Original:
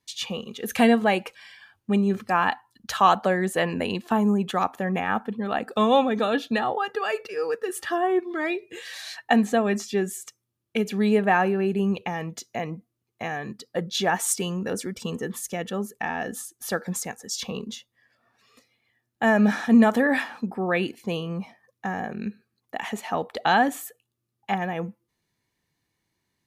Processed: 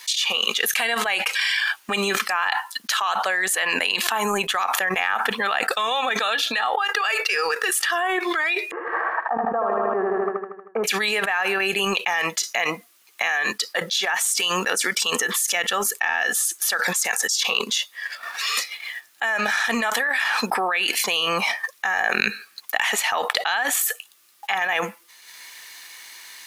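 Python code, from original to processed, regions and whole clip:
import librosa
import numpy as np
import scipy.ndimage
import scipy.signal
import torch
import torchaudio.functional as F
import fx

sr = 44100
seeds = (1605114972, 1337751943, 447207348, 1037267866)

y = fx.chain(x, sr, fx.law_mismatch(coded='A'),
    fx.ellip_lowpass(hz=1200.0, order=4, stop_db=70),
    fx.echo_feedback(ms=78, feedback_pct=60, wet_db=-3.5), at=(8.71, 10.84))
y = scipy.signal.sosfilt(scipy.signal.butter(2, 1400.0, 'highpass', fs=sr, output='sos'), y)
y = fx.transient(y, sr, attack_db=-2, sustain_db=-7)
y = fx.env_flatten(y, sr, amount_pct=100)
y = F.gain(torch.from_numpy(y), -1.0).numpy()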